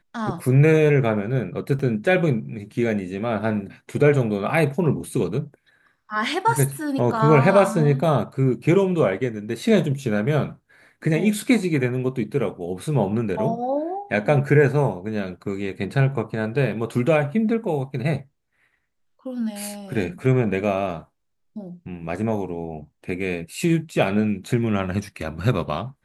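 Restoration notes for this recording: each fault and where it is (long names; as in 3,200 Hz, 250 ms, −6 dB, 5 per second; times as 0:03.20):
0:01.79: drop-out 4.6 ms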